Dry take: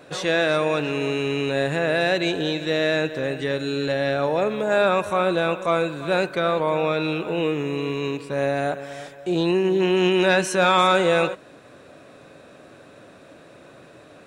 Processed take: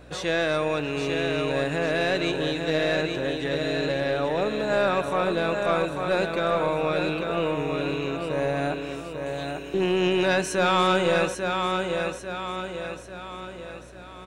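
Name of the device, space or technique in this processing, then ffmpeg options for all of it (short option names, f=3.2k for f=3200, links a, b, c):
valve amplifier with mains hum: -filter_complex "[0:a]asettb=1/sr,asplit=3[a][b][c];[a]atrim=end=8.954[d];[b]atrim=start=8.95:end=9.74,asetpts=PTS-STARTPTS,afade=t=in:d=0.004:c=qsin,afade=t=out:st=0.786:d=0.004:c=qsin,aderivative[e];[c]atrim=start=9.736[f];[d][e]acrossfade=d=0.004:c1=hsin:c2=qsin[g];[g][f]acrossfade=d=0.004:c1=qsin:c2=hsin,aecho=1:1:844|1688|2532|3376|4220|5064:0.531|0.26|0.127|0.0625|0.0306|0.015,aeval=exprs='(tanh(2.51*val(0)+0.25)-tanh(0.25))/2.51':c=same,aeval=exprs='val(0)+0.00501*(sin(2*PI*60*n/s)+sin(2*PI*2*60*n/s)/2+sin(2*PI*3*60*n/s)/3+sin(2*PI*4*60*n/s)/4+sin(2*PI*5*60*n/s)/5)':c=same,volume=-3dB"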